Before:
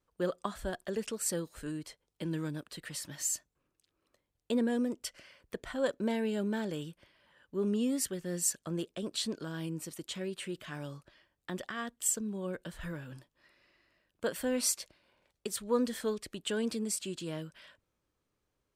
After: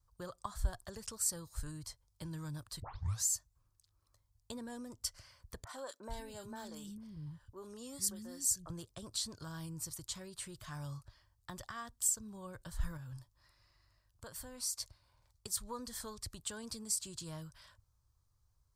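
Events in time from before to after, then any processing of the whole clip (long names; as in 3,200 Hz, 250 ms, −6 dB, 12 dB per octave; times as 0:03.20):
0:02.82: tape start 0.42 s
0:05.64–0:08.70: three-band delay without the direct sound mids, highs, lows 30/450 ms, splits 260/1,800 Hz
0:12.97–0:14.78: downward compressor 1.5 to 1, threshold −54 dBFS
whole clip: parametric band 1,100 Hz +4.5 dB 0.47 octaves; downward compressor 2 to 1, threshold −36 dBFS; drawn EQ curve 110 Hz 0 dB, 190 Hz −22 dB, 430 Hz −26 dB, 890 Hz −15 dB, 2,800 Hz −24 dB, 4,700 Hz −9 dB; level +12.5 dB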